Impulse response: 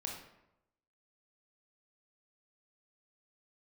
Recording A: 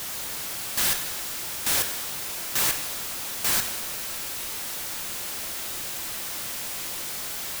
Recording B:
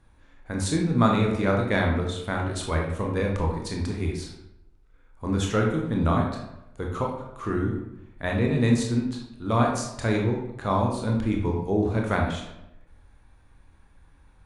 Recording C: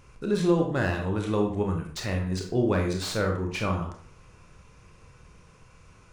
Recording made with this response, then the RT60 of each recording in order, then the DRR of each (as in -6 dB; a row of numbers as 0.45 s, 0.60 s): B; 1.4 s, 0.90 s, 0.50 s; 6.0 dB, -0.5 dB, 1.5 dB